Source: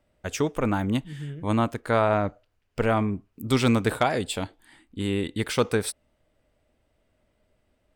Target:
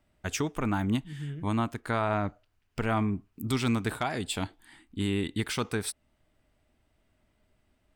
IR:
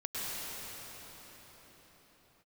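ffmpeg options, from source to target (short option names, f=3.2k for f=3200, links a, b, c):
-af "equalizer=f=520:t=o:w=0.48:g=-9.5,alimiter=limit=-17dB:level=0:latency=1:release=450"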